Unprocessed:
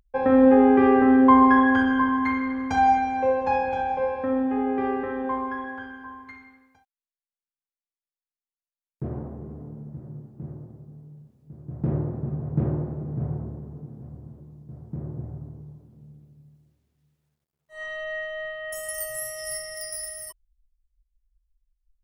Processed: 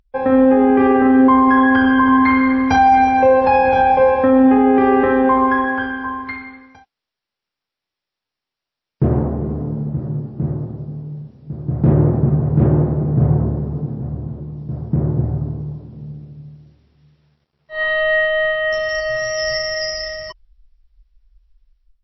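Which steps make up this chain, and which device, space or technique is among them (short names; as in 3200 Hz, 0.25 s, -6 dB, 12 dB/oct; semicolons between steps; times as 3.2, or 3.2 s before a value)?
13.94–14.57 air absorption 110 m; low-bitrate web radio (AGC gain up to 12.5 dB; limiter -8.5 dBFS, peak gain reduction 7.5 dB; gain +4 dB; MP3 24 kbps 16000 Hz)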